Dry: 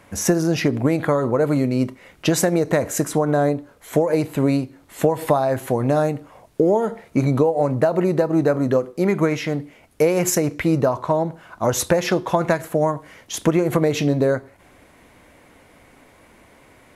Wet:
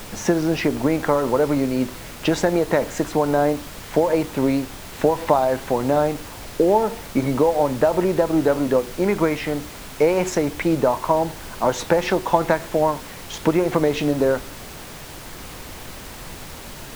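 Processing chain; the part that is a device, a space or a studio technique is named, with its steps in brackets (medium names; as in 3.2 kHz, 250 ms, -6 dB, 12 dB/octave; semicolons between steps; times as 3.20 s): horn gramophone (band-pass 190–4400 Hz; peaking EQ 890 Hz +7 dB 0.2 oct; wow and flutter; pink noise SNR 15 dB)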